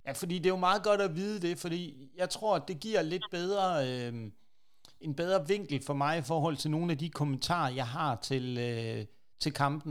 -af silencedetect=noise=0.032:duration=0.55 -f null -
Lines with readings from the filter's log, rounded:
silence_start: 4.09
silence_end: 5.08 | silence_duration: 0.98